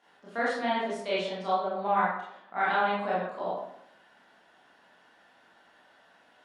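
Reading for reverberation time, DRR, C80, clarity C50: 0.75 s, −8.5 dB, 4.0 dB, 0.0 dB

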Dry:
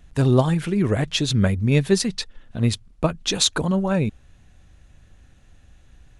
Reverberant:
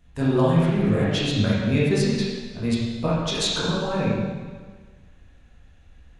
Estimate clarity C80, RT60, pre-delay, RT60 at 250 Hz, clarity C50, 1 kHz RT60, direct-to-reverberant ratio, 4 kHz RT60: 0.5 dB, 1.5 s, 6 ms, 1.5 s, −3.0 dB, 1.5 s, −8.5 dB, 1.4 s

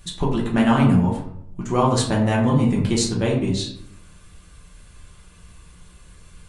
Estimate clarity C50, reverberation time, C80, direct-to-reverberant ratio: 5.0 dB, 0.70 s, 8.0 dB, −3.5 dB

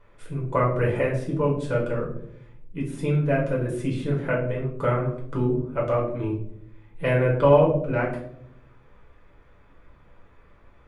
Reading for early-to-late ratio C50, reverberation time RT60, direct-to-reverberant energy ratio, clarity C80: 6.5 dB, 0.70 s, −4.0 dB, 10.0 dB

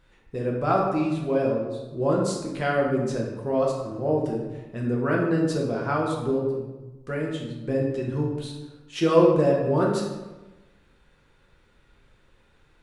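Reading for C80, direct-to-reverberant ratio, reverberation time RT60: 5.0 dB, −3.0 dB, 1.1 s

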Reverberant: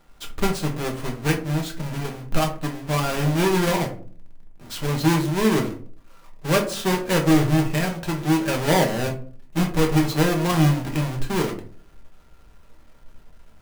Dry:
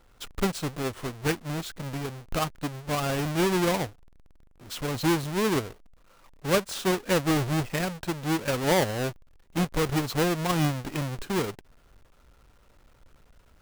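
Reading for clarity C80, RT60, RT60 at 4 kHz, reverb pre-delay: 16.0 dB, 0.45 s, 0.25 s, 5 ms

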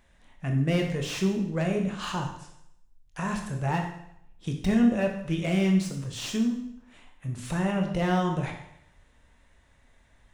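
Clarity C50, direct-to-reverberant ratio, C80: 6.5 dB, 2.0 dB, 9.0 dB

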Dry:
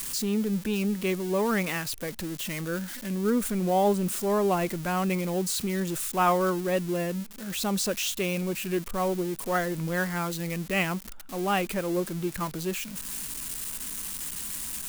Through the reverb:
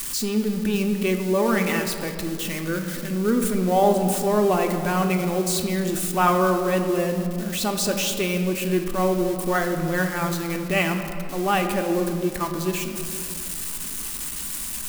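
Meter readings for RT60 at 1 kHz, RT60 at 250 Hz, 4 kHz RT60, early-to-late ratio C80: 2.2 s, 2.8 s, 1.3 s, 7.5 dB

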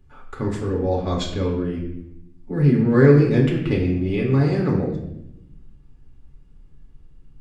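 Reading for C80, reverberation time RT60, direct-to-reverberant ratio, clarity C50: 7.5 dB, 0.80 s, −2.5 dB, 5.0 dB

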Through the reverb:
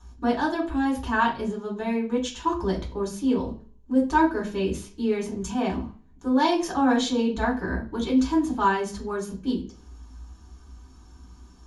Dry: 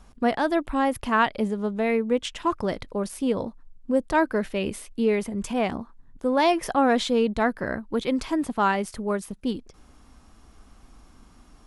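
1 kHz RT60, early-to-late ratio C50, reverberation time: 0.40 s, 10.5 dB, 0.40 s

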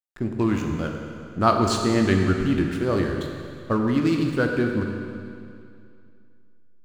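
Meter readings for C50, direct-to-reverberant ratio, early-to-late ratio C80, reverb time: 3.5 dB, 2.0 dB, 4.5 dB, 2.4 s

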